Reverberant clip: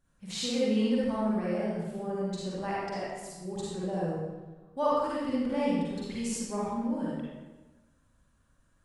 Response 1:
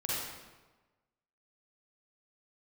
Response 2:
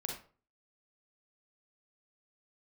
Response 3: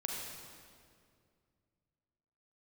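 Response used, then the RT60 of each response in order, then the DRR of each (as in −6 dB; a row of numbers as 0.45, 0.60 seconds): 1; 1.2, 0.40, 2.2 seconds; −7.5, 0.5, −1.5 decibels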